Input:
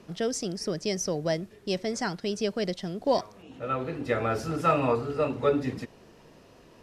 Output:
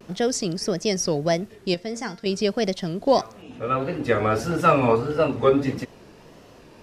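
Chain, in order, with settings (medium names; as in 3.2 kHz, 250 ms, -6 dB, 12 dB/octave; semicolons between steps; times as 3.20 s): vibrato 1.6 Hz 99 cents; 1.74–2.26 s: feedback comb 230 Hz, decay 0.4 s, harmonics all, mix 60%; trim +6 dB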